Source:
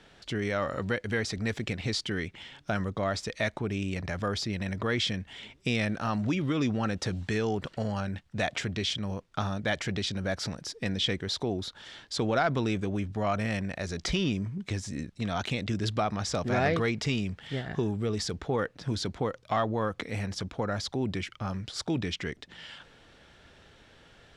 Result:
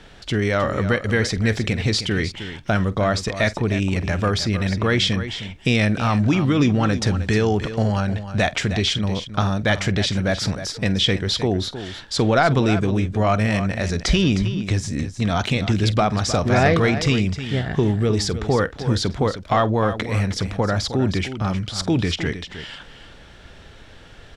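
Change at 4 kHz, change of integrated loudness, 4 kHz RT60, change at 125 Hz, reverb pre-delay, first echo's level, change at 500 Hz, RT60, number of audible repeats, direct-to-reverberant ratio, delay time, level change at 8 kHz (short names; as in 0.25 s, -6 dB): +9.5 dB, +10.5 dB, none, +12.0 dB, none, -18.5 dB, +9.5 dB, none, 2, none, 47 ms, +9.5 dB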